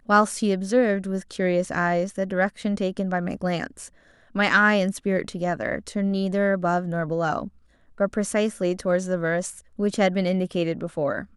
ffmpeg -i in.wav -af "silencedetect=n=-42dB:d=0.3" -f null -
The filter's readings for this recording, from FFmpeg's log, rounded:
silence_start: 3.88
silence_end: 4.35 | silence_duration: 0.47
silence_start: 7.49
silence_end: 7.98 | silence_duration: 0.50